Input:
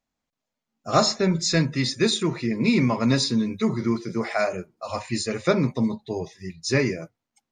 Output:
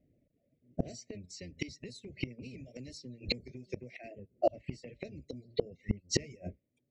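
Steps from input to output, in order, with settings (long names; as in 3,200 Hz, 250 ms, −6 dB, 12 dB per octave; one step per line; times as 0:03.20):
sub-octave generator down 1 octave, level 0 dB
elliptic band-stop filter 560–1,800 Hz, stop band 40 dB
low-pass that shuts in the quiet parts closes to 720 Hz, open at −16 dBFS
reverb reduction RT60 0.67 s
high-pass filter 78 Hz 6 dB per octave
downward compressor 8 to 1, threshold −31 dBFS, peak gain reduction 15.5 dB
gate with flip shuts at −32 dBFS, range −30 dB
wrong playback speed 44.1 kHz file played as 48 kHz
level +17 dB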